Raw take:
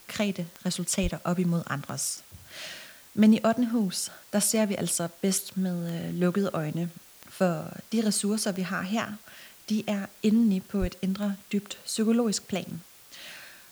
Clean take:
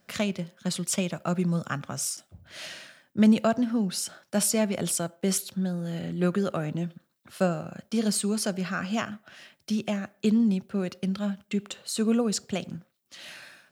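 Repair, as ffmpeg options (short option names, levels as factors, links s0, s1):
-filter_complex "[0:a]adeclick=t=4,asplit=3[s0][s1][s2];[s0]afade=t=out:st=1.02:d=0.02[s3];[s1]highpass=f=140:w=0.5412,highpass=f=140:w=1.3066,afade=t=in:st=1.02:d=0.02,afade=t=out:st=1.14:d=0.02[s4];[s2]afade=t=in:st=1.14:d=0.02[s5];[s3][s4][s5]amix=inputs=3:normalize=0,asplit=3[s6][s7][s8];[s6]afade=t=out:st=10.8:d=0.02[s9];[s7]highpass=f=140:w=0.5412,highpass=f=140:w=1.3066,afade=t=in:st=10.8:d=0.02,afade=t=out:st=10.92:d=0.02[s10];[s8]afade=t=in:st=10.92:d=0.02[s11];[s9][s10][s11]amix=inputs=3:normalize=0,afftdn=nr=10:nf=-52"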